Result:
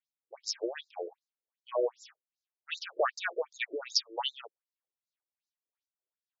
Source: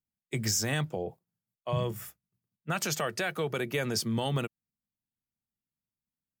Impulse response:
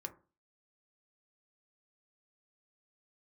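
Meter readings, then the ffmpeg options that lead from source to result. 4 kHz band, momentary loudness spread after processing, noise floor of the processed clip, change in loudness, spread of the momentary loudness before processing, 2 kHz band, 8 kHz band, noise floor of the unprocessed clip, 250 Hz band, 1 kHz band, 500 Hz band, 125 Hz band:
+0.5 dB, 12 LU, under -85 dBFS, -3.0 dB, 13 LU, -3.5 dB, -9.5 dB, under -85 dBFS, -13.0 dB, -1.5 dB, -0.5 dB, under -40 dB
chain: -af "tremolo=f=3.3:d=0.76,afftfilt=real='re*between(b*sr/1024,420*pow(5400/420,0.5+0.5*sin(2*PI*2.6*pts/sr))/1.41,420*pow(5400/420,0.5+0.5*sin(2*PI*2.6*pts/sr))*1.41)':imag='im*between(b*sr/1024,420*pow(5400/420,0.5+0.5*sin(2*PI*2.6*pts/sr))/1.41,420*pow(5400/420,0.5+0.5*sin(2*PI*2.6*pts/sr))*1.41)':win_size=1024:overlap=0.75,volume=8dB"

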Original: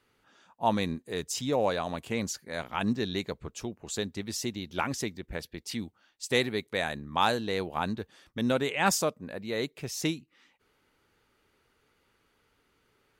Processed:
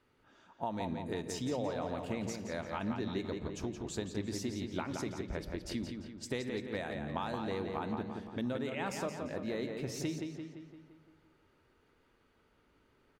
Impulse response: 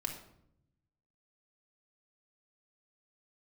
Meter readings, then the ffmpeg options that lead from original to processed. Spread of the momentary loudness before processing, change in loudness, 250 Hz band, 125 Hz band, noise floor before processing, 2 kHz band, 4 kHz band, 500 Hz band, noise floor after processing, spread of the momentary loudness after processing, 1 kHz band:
12 LU, -7.0 dB, -4.0 dB, -4.0 dB, -71 dBFS, -10.5 dB, -11.5 dB, -6.5 dB, -71 dBFS, 5 LU, -9.5 dB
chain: -filter_complex "[0:a]highshelf=f=11k:g=-7.5,asplit=2[a][b];[1:a]atrim=start_sample=2205[c];[b][c]afir=irnorm=-1:irlink=0,volume=-7dB[d];[a][d]amix=inputs=2:normalize=0,acompressor=threshold=-31dB:ratio=6,tiltshelf=f=1.4k:g=3.5,asplit=2[e][f];[f]adelay=172,lowpass=f=4.9k:p=1,volume=-5dB,asplit=2[g][h];[h]adelay=172,lowpass=f=4.9k:p=1,volume=0.54,asplit=2[i][j];[j]adelay=172,lowpass=f=4.9k:p=1,volume=0.54,asplit=2[k][l];[l]adelay=172,lowpass=f=4.9k:p=1,volume=0.54,asplit=2[m][n];[n]adelay=172,lowpass=f=4.9k:p=1,volume=0.54,asplit=2[o][p];[p]adelay=172,lowpass=f=4.9k:p=1,volume=0.54,asplit=2[q][r];[r]adelay=172,lowpass=f=4.9k:p=1,volume=0.54[s];[e][g][i][k][m][o][q][s]amix=inputs=8:normalize=0,volume=-5.5dB"

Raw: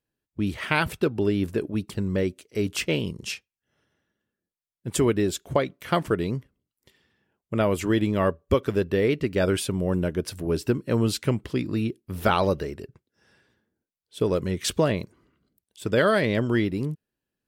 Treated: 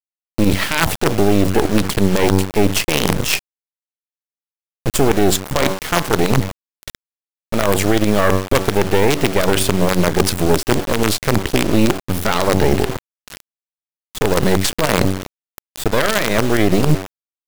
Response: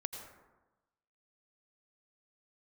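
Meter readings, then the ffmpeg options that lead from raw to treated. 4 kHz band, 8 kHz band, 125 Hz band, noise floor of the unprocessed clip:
+12.0 dB, +13.5 dB, +8.0 dB, under -85 dBFS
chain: -af "bandreject=f=95.26:t=h:w=4,bandreject=f=190.52:t=h:w=4,bandreject=f=285.78:t=h:w=4,bandreject=f=381.04:t=h:w=4,bandreject=f=476.3:t=h:w=4,bandreject=f=571.56:t=h:w=4,bandreject=f=666.82:t=h:w=4,bandreject=f=762.08:t=h:w=4,bandreject=f=857.34:t=h:w=4,bandreject=f=952.6:t=h:w=4,bandreject=f=1.04786k:t=h:w=4,bandreject=f=1.14312k:t=h:w=4,areverse,acompressor=threshold=-35dB:ratio=20,areverse,acrusher=bits=6:dc=4:mix=0:aa=0.000001,alimiter=level_in=31.5dB:limit=-1dB:release=50:level=0:latency=1,volume=-1dB"

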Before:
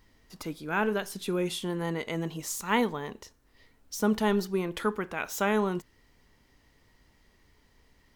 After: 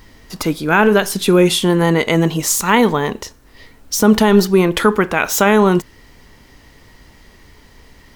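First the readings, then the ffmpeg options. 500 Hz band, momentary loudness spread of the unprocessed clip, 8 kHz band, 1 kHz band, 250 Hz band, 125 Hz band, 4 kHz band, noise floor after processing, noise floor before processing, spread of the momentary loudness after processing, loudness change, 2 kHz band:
+16.0 dB, 12 LU, +18.0 dB, +15.0 dB, +16.0 dB, +17.5 dB, +17.0 dB, -47 dBFS, -65 dBFS, 9 LU, +16.0 dB, +15.5 dB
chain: -af "alimiter=level_in=19dB:limit=-1dB:release=50:level=0:latency=1,volume=-1dB"

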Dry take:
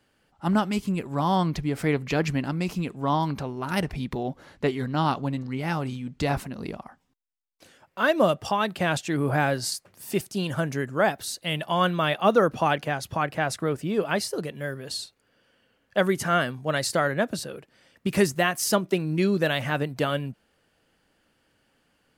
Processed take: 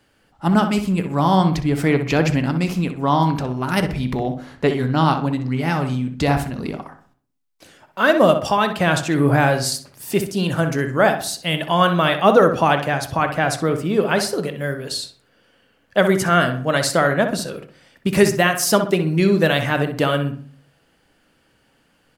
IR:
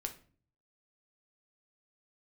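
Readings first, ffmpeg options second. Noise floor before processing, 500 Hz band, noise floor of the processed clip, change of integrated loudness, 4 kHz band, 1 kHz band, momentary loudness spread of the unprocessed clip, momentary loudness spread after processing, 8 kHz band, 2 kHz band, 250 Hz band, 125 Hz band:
-69 dBFS, +7.0 dB, -61 dBFS, +7.0 dB, +6.5 dB, +7.0 dB, 10 LU, 10 LU, +6.5 dB, +7.0 dB, +7.5 dB, +8.0 dB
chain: -filter_complex "[0:a]asplit=2[a][b];[b]adelay=63,lowpass=f=2.5k:p=1,volume=-8dB,asplit=2[c][d];[d]adelay=63,lowpass=f=2.5k:p=1,volume=0.4,asplit=2[e][f];[f]adelay=63,lowpass=f=2.5k:p=1,volume=0.4,asplit=2[g][h];[h]adelay=63,lowpass=f=2.5k:p=1,volume=0.4,asplit=2[i][j];[j]adelay=63,lowpass=f=2.5k:p=1,volume=0.4[k];[a][c][e][g][i][k]amix=inputs=6:normalize=0,asplit=2[l][m];[1:a]atrim=start_sample=2205[n];[m][n]afir=irnorm=-1:irlink=0,volume=-2dB[o];[l][o]amix=inputs=2:normalize=0,volume=2dB"

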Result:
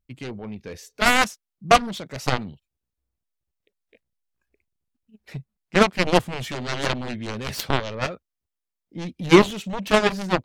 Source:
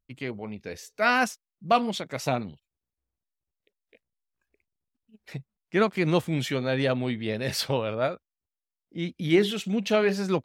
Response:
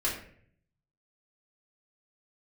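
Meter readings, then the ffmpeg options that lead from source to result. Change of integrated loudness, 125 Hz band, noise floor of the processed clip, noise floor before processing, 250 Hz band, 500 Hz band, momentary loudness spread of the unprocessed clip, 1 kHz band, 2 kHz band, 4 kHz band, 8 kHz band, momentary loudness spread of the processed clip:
+4.5 dB, +2.0 dB, -85 dBFS, under -85 dBFS, +3.0 dB, +3.0 dB, 19 LU, +6.0 dB, +5.5 dB, +6.0 dB, +6.5 dB, 22 LU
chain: -af "aeval=exprs='0.376*(cos(1*acos(clip(val(0)/0.376,-1,1)))-cos(1*PI/2))+0.0841*(cos(7*acos(clip(val(0)/0.376,-1,1)))-cos(7*PI/2))':c=same,lowshelf=f=270:g=5,volume=5.5dB"

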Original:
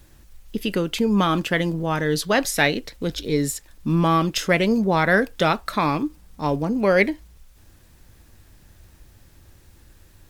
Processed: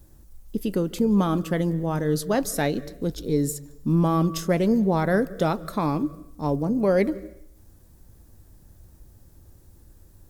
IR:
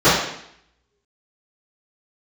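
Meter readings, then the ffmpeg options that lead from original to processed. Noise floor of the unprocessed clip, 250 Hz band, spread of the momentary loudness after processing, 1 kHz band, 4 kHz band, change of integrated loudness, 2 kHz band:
-53 dBFS, -0.5 dB, 10 LU, -5.5 dB, -11.0 dB, -2.5 dB, -12.0 dB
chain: -filter_complex "[0:a]equalizer=f=2.5k:t=o:w=2.2:g=-14.5,asplit=2[a][b];[b]asuperstop=centerf=860:order=4:qfactor=2.6[c];[1:a]atrim=start_sample=2205,adelay=138[d];[c][d]afir=irnorm=-1:irlink=0,volume=-46.5dB[e];[a][e]amix=inputs=2:normalize=0"

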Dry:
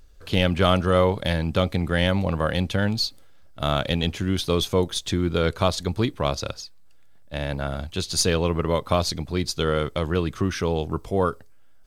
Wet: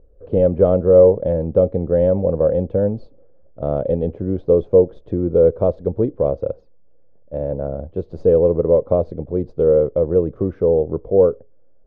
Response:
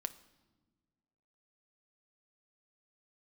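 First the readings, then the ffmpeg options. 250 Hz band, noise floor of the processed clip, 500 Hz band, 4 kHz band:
+2.5 dB, -46 dBFS, +10.5 dB, under -30 dB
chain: -af "lowpass=f=510:t=q:w=4.9"

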